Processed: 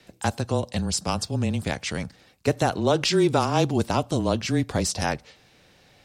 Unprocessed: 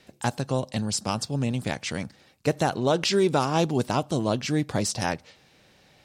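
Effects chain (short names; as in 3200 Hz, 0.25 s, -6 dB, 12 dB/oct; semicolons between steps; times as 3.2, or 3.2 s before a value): frequency shift -21 Hz; gain +1.5 dB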